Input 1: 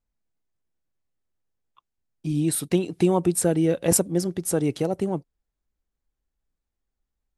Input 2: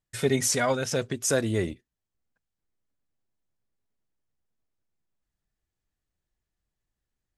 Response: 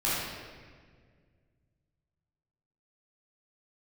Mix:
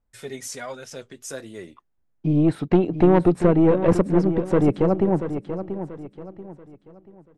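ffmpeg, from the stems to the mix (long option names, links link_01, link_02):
-filter_complex "[0:a]lowpass=1600,acontrast=70,aeval=exprs='(tanh(2.82*val(0)+0.4)-tanh(0.4))/2.82':channel_layout=same,volume=1.5dB,asplit=2[link_01][link_02];[link_02]volume=-10dB[link_03];[1:a]highpass=frequency=240:poles=1,flanger=delay=4.7:depth=6:regen=-54:speed=1.3:shape=triangular,volume=-5dB[link_04];[link_03]aecho=0:1:685|1370|2055|2740|3425:1|0.35|0.122|0.0429|0.015[link_05];[link_01][link_04][link_05]amix=inputs=3:normalize=0"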